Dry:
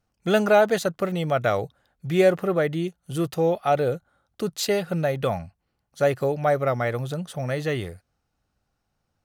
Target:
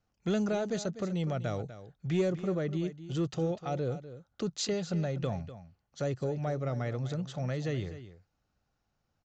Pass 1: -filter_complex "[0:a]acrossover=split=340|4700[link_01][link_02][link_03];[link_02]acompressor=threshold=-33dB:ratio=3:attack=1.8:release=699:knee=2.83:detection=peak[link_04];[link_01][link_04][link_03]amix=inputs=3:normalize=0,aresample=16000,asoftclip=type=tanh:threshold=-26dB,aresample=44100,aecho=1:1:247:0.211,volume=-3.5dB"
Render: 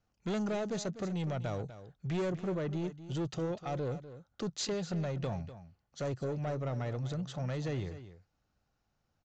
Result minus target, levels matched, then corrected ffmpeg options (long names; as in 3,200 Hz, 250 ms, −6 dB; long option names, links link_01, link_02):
soft clipping: distortion +15 dB
-filter_complex "[0:a]acrossover=split=340|4700[link_01][link_02][link_03];[link_02]acompressor=threshold=-33dB:ratio=3:attack=1.8:release=699:knee=2.83:detection=peak[link_04];[link_01][link_04][link_03]amix=inputs=3:normalize=0,aresample=16000,asoftclip=type=tanh:threshold=-15dB,aresample=44100,aecho=1:1:247:0.211,volume=-3.5dB"